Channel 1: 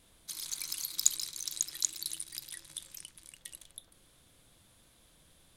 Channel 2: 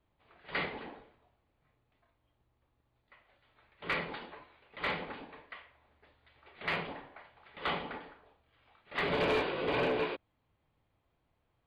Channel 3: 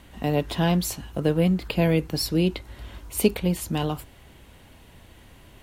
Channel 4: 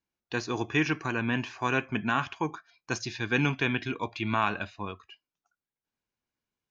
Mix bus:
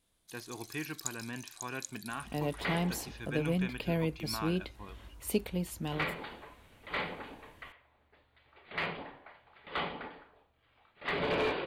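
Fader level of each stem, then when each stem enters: -12.5 dB, -1.0 dB, -10.5 dB, -13.0 dB; 0.00 s, 2.10 s, 2.10 s, 0.00 s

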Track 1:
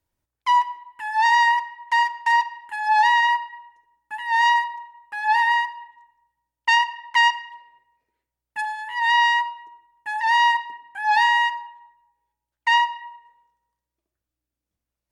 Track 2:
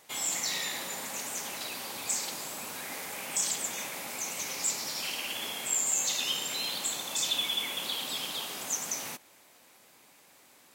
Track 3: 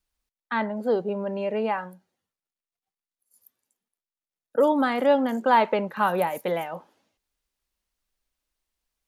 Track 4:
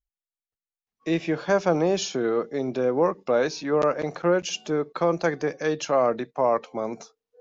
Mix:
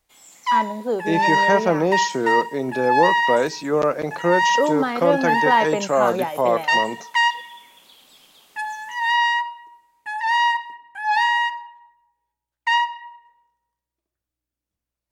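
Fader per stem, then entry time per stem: -1.0 dB, -16.5 dB, 0.0 dB, +2.5 dB; 0.00 s, 0.00 s, 0.00 s, 0.00 s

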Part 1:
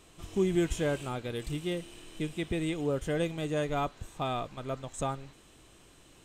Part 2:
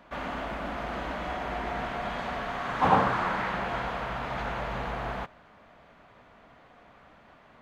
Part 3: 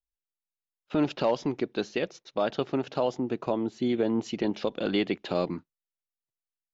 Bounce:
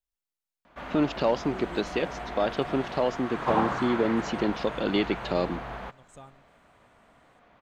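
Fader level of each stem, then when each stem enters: -15.5 dB, -4.0 dB, +1.0 dB; 1.15 s, 0.65 s, 0.00 s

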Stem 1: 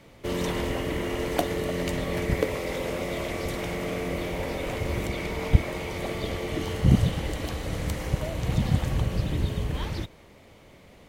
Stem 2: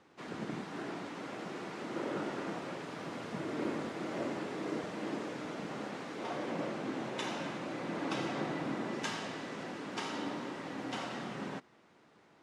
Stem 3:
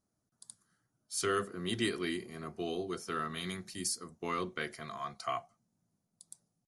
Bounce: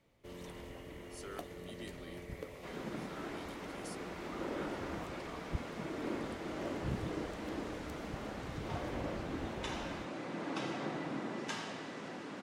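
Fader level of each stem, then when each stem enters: -20.0 dB, -3.0 dB, -17.0 dB; 0.00 s, 2.45 s, 0.00 s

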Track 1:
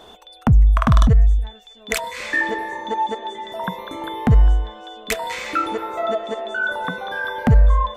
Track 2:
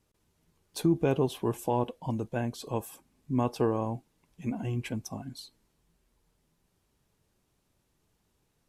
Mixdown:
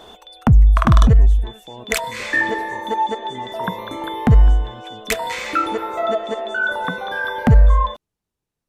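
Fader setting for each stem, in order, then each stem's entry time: +2.0 dB, -10.0 dB; 0.00 s, 0.00 s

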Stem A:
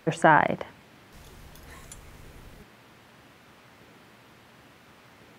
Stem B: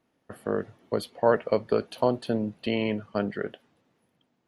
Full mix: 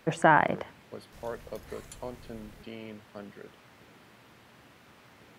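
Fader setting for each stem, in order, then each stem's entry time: -2.5 dB, -16.0 dB; 0.00 s, 0.00 s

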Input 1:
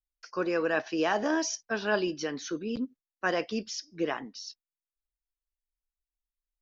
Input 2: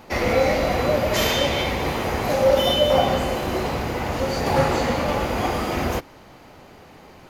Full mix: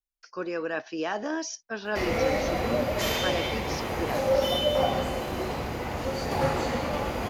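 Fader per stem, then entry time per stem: -3.0 dB, -6.5 dB; 0.00 s, 1.85 s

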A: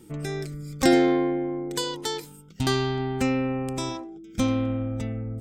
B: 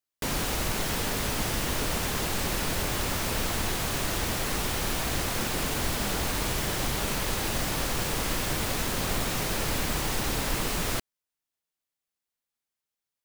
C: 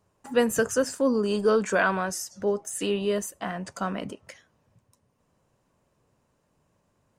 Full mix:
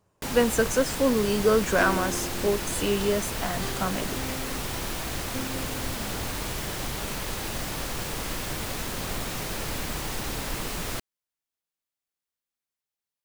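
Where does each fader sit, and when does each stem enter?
-13.0 dB, -3.0 dB, +0.5 dB; 0.95 s, 0.00 s, 0.00 s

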